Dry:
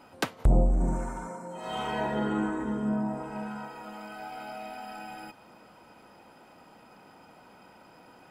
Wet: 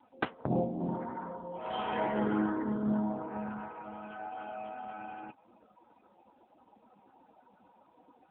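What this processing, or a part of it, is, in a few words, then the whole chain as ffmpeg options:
mobile call with aggressive noise cancelling: -af "highpass=170,afftdn=noise_reduction=19:noise_floor=-46" -ar 8000 -c:a libopencore_amrnb -b:a 7950

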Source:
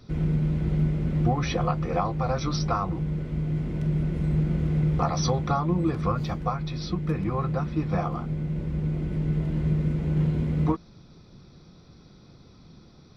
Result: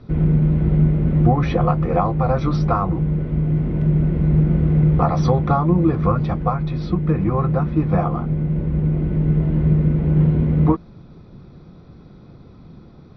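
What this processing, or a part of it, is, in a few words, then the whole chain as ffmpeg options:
phone in a pocket: -af "lowpass=3700,highshelf=frequency=2100:gain=-11,volume=8.5dB"

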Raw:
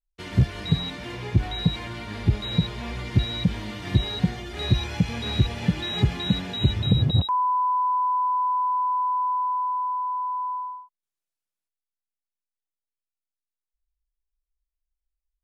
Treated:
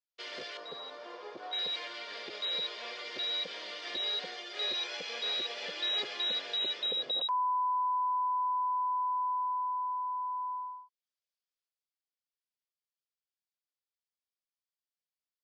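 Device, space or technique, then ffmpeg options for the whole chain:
phone speaker on a table: -filter_complex "[0:a]asettb=1/sr,asplit=3[link_01][link_02][link_03];[link_01]atrim=end=0.574[link_04];[link_02]atrim=start=0.57:end=1.53,asetpts=PTS-STARTPTS,afade=type=in:duration=0.004:curve=qsin,afade=type=out:start_time=0.956:duration=0.004:curve=qsin,highshelf=frequency=1600:width_type=q:width=1.5:gain=-10.5[link_05];[link_03]atrim=start=1.526[link_06];[link_04][link_05]acrossfade=duration=0.004:curve1=hsin:curve2=qsin[link_07];[link_07][link_06]acrossfade=duration=0.004:curve1=qsin:curve2=hsin,highpass=frequency=480:width=0.5412,highpass=frequency=480:width=1.3066,equalizer=frequency=510:width_type=q:width=4:gain=5,equalizer=frequency=860:width_type=q:width=4:gain=-8,equalizer=frequency=3300:width_type=q:width=4:gain=5,equalizer=frequency=4800:width_type=q:width=4:gain=8,lowpass=frequency=6500:width=0.5412,lowpass=frequency=6500:width=1.3066,volume=-4.5dB"

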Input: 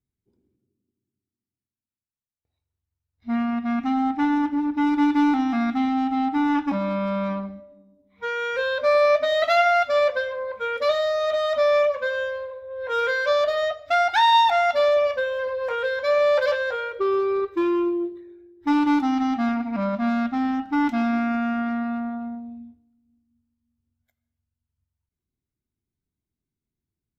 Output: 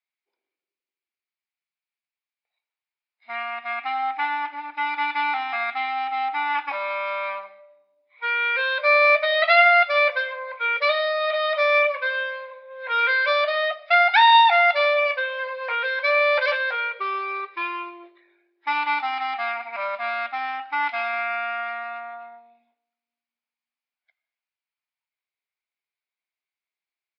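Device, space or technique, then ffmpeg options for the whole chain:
musical greeting card: -af "aresample=11025,aresample=44100,highpass=frequency=670:width=0.5412,highpass=frequency=670:width=1.3066,equalizer=frequency=2300:width_type=o:width=0.42:gain=11,volume=2.5dB"

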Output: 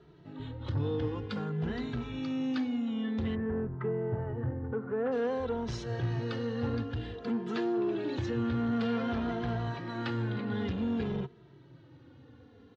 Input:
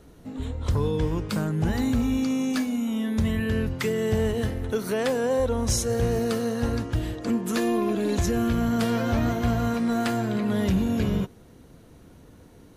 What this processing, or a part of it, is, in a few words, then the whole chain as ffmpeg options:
barber-pole flanger into a guitar amplifier: -filter_complex "[0:a]asplit=3[link_01][link_02][link_03];[link_01]afade=type=out:start_time=3.34:duration=0.02[link_04];[link_02]lowpass=frequency=1400:width=0.5412,lowpass=frequency=1400:width=1.3066,afade=type=in:start_time=3.34:duration=0.02,afade=type=out:start_time=5.11:duration=0.02[link_05];[link_03]afade=type=in:start_time=5.11:duration=0.02[link_06];[link_04][link_05][link_06]amix=inputs=3:normalize=0,asplit=2[link_07][link_08];[link_08]adelay=2.6,afreqshift=-0.53[link_09];[link_07][link_09]amix=inputs=2:normalize=1,asoftclip=type=tanh:threshold=-22.5dB,highpass=110,equalizer=frequency=130:width_type=q:width=4:gain=6,equalizer=frequency=190:width_type=q:width=4:gain=-9,equalizer=frequency=620:width_type=q:width=4:gain=-8,equalizer=frequency=1100:width_type=q:width=4:gain=-3,equalizer=frequency=2300:width_type=q:width=4:gain=-5,lowpass=frequency=3900:width=0.5412,lowpass=frequency=3900:width=1.3066"

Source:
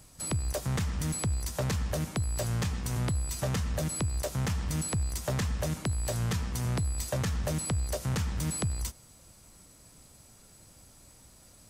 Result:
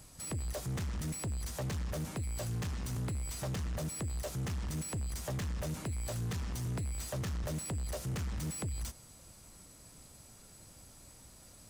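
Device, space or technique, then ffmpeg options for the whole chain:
saturation between pre-emphasis and de-emphasis: -af "highshelf=frequency=4100:gain=9,asoftclip=type=tanh:threshold=-33dB,highshelf=frequency=4100:gain=-9"

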